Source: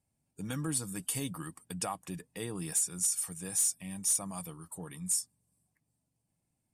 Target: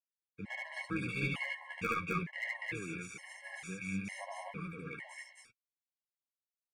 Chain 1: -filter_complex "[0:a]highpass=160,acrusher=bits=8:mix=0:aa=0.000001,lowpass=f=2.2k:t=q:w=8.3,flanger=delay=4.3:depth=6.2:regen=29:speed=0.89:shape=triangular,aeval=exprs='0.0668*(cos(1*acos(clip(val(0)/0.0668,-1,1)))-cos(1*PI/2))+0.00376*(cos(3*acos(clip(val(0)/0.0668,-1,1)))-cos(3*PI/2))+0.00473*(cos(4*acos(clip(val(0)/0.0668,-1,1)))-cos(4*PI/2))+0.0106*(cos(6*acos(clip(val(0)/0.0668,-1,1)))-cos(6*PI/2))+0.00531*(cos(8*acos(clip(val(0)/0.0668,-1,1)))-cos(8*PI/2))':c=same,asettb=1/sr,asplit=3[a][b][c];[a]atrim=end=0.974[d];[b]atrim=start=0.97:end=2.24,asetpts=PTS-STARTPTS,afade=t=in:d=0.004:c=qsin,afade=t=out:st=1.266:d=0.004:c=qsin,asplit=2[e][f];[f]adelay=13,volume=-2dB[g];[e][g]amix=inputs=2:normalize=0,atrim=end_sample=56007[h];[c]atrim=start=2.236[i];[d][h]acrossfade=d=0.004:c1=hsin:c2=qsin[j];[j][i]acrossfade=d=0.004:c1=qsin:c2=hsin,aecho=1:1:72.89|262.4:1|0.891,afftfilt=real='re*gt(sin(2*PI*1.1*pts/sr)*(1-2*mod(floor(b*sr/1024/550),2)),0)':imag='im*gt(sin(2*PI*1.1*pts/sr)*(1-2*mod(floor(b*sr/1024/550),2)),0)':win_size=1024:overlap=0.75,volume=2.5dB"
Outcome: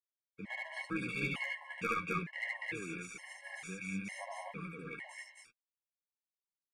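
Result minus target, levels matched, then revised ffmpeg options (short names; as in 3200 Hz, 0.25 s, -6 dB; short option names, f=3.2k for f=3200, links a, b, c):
125 Hz band -3.0 dB
-filter_complex "[0:a]highpass=42,acrusher=bits=8:mix=0:aa=0.000001,lowpass=f=2.2k:t=q:w=8.3,flanger=delay=4.3:depth=6.2:regen=29:speed=0.89:shape=triangular,aeval=exprs='0.0668*(cos(1*acos(clip(val(0)/0.0668,-1,1)))-cos(1*PI/2))+0.00376*(cos(3*acos(clip(val(0)/0.0668,-1,1)))-cos(3*PI/2))+0.00473*(cos(4*acos(clip(val(0)/0.0668,-1,1)))-cos(4*PI/2))+0.0106*(cos(6*acos(clip(val(0)/0.0668,-1,1)))-cos(6*PI/2))+0.00531*(cos(8*acos(clip(val(0)/0.0668,-1,1)))-cos(8*PI/2))':c=same,asettb=1/sr,asplit=3[a][b][c];[a]atrim=end=0.974[d];[b]atrim=start=0.97:end=2.24,asetpts=PTS-STARTPTS,afade=t=in:d=0.004:c=qsin,afade=t=out:st=1.266:d=0.004:c=qsin,asplit=2[e][f];[f]adelay=13,volume=-2dB[g];[e][g]amix=inputs=2:normalize=0,atrim=end_sample=56007[h];[c]atrim=start=2.236[i];[d][h]acrossfade=d=0.004:c1=hsin:c2=qsin[j];[j][i]acrossfade=d=0.004:c1=qsin:c2=hsin,aecho=1:1:72.89|262.4:1|0.891,afftfilt=real='re*gt(sin(2*PI*1.1*pts/sr)*(1-2*mod(floor(b*sr/1024/550),2)),0)':imag='im*gt(sin(2*PI*1.1*pts/sr)*(1-2*mod(floor(b*sr/1024/550),2)),0)':win_size=1024:overlap=0.75,volume=2.5dB"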